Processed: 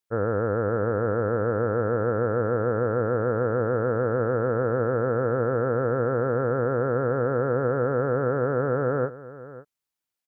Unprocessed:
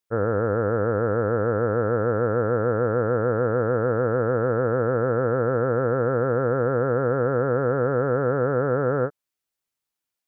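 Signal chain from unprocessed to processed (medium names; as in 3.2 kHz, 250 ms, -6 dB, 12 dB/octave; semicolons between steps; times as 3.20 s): delay 546 ms -16.5 dB; trim -2 dB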